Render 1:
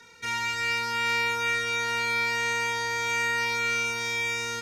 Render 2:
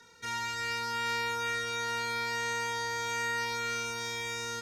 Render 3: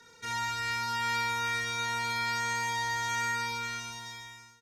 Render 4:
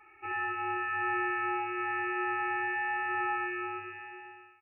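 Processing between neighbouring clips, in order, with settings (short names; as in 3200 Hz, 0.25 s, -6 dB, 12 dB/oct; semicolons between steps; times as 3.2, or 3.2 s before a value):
bell 2400 Hz -8.5 dB 0.41 oct; gain -3.5 dB
ending faded out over 1.40 s; tapped delay 52/59 ms -18.5/-3 dB
inverted band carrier 2700 Hz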